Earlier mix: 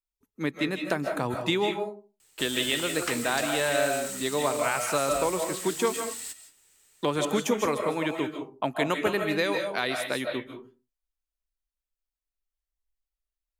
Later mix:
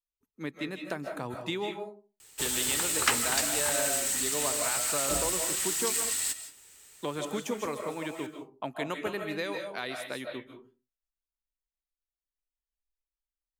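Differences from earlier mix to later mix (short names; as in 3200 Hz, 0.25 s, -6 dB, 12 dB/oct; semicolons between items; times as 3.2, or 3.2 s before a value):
speech -7.5 dB; background +7.5 dB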